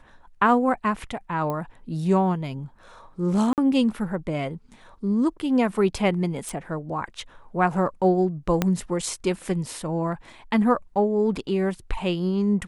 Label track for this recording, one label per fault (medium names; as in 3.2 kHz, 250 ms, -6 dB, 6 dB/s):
1.500000	1.500000	pop -17 dBFS
3.530000	3.580000	dropout 48 ms
6.490000	6.490000	pop
8.620000	8.620000	pop -7 dBFS